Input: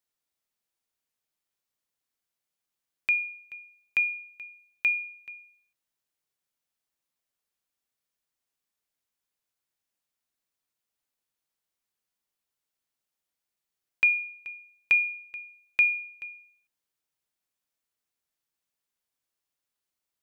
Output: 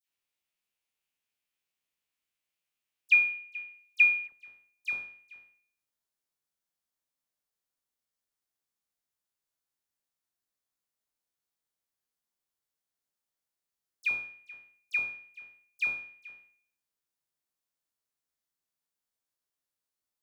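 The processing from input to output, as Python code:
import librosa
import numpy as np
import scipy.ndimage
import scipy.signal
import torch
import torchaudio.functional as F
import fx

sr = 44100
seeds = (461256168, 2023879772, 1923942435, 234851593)

y = fx.spec_trails(x, sr, decay_s=0.51)
y = fx.peak_eq(y, sr, hz=2600.0, db=fx.steps((0.0, 9.0), (4.24, -3.5)), octaves=0.77)
y = fx.dispersion(y, sr, late='lows', ms=84.0, hz=2000.0)
y = F.gain(torch.from_numpy(y), -5.0).numpy()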